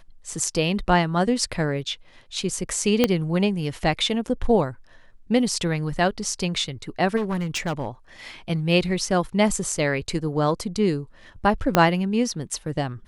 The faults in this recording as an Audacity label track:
3.040000	3.040000	pop -4 dBFS
7.160000	7.870000	clipped -21.5 dBFS
11.750000	11.750000	pop -2 dBFS

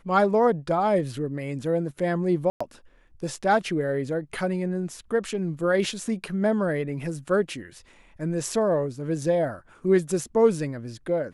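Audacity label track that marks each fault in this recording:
2.500000	2.600000	dropout 105 ms

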